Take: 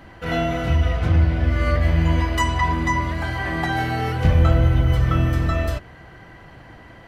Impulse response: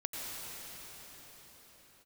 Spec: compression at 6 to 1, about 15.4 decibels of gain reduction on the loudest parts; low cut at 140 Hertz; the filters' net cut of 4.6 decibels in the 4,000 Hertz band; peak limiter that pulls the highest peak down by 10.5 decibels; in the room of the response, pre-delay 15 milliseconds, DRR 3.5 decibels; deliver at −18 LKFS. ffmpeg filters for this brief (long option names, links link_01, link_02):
-filter_complex "[0:a]highpass=140,equalizer=frequency=4000:width_type=o:gain=-7,acompressor=threshold=-35dB:ratio=6,alimiter=level_in=11dB:limit=-24dB:level=0:latency=1,volume=-11dB,asplit=2[link_01][link_02];[1:a]atrim=start_sample=2205,adelay=15[link_03];[link_02][link_03]afir=irnorm=-1:irlink=0,volume=-7dB[link_04];[link_01][link_04]amix=inputs=2:normalize=0,volume=23.5dB"